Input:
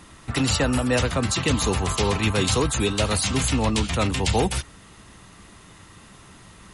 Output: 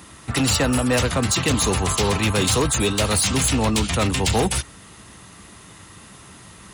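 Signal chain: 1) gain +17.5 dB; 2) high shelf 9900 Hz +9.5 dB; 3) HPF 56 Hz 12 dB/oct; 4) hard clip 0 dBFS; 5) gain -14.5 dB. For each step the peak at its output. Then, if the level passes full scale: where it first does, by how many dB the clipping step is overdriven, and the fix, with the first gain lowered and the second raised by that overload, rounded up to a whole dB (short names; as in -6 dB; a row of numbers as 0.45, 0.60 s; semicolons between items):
+7.5, +9.0, +9.5, 0.0, -14.5 dBFS; step 1, 9.5 dB; step 1 +7.5 dB, step 5 -4.5 dB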